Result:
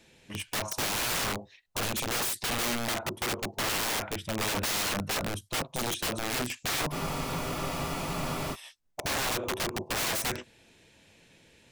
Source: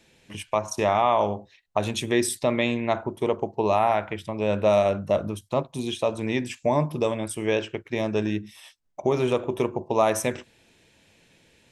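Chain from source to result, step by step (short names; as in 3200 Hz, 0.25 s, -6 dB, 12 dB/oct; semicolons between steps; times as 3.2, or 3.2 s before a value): wrapped overs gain 25 dB; spectral freeze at 6.94, 1.59 s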